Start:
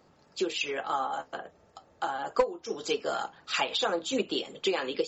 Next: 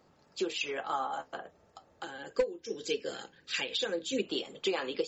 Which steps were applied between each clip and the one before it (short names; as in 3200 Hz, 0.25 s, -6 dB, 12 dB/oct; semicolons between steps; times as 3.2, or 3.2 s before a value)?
spectral gain 2.03–4.23, 560–1500 Hz -13 dB; gain -3 dB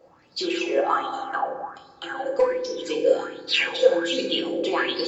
reverb RT60 1.8 s, pre-delay 3 ms, DRR -2.5 dB; LFO bell 1.3 Hz 520–4600 Hz +17 dB; gain -1 dB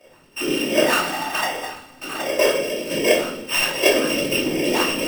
sample sorter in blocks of 16 samples; whisperiser; shoebox room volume 390 m³, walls furnished, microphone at 2.7 m; gain -1 dB